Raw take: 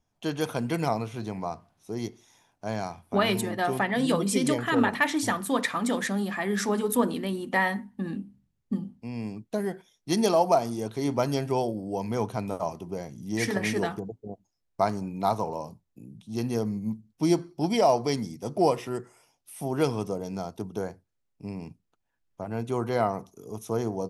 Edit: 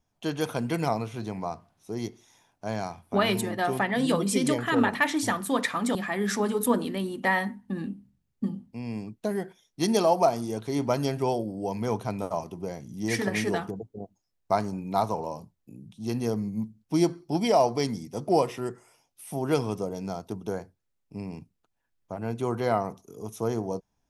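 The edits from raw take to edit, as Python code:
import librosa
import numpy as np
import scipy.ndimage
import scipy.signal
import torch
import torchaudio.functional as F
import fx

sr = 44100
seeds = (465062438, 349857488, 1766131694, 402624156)

y = fx.edit(x, sr, fx.cut(start_s=5.95, length_s=0.29), tone=tone)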